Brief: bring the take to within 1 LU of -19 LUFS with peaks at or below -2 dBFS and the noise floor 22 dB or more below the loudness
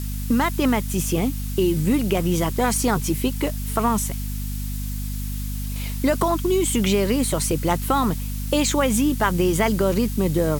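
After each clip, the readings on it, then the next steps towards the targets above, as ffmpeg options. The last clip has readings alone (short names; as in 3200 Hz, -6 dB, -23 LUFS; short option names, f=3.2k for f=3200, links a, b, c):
hum 50 Hz; harmonics up to 250 Hz; hum level -25 dBFS; noise floor -28 dBFS; noise floor target -44 dBFS; loudness -22.0 LUFS; peak -5.0 dBFS; loudness target -19.0 LUFS
-> -af "bandreject=f=50:t=h:w=4,bandreject=f=100:t=h:w=4,bandreject=f=150:t=h:w=4,bandreject=f=200:t=h:w=4,bandreject=f=250:t=h:w=4"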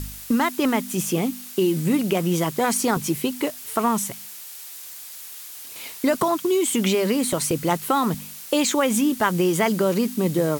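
hum none; noise floor -39 dBFS; noise floor target -45 dBFS
-> -af "afftdn=nr=6:nf=-39"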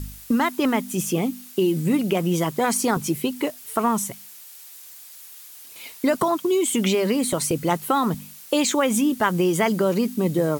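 noise floor -44 dBFS; noise floor target -45 dBFS
-> -af "afftdn=nr=6:nf=-44"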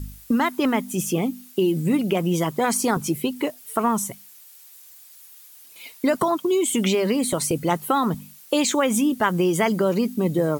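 noise floor -48 dBFS; loudness -22.5 LUFS; peak -6.5 dBFS; loudness target -19.0 LUFS
-> -af "volume=3.5dB"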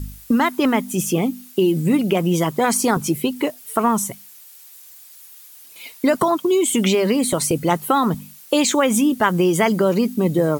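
loudness -19.0 LUFS; peak -3.0 dBFS; noise floor -44 dBFS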